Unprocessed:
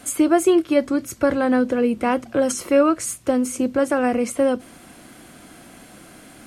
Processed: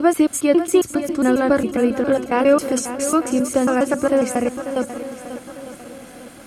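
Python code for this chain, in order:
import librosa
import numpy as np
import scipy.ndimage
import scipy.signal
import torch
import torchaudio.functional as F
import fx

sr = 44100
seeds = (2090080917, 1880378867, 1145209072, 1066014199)

y = fx.block_reorder(x, sr, ms=136.0, group=3)
y = fx.echo_swing(y, sr, ms=901, ratio=1.5, feedback_pct=37, wet_db=-11.5)
y = y * librosa.db_to_amplitude(1.5)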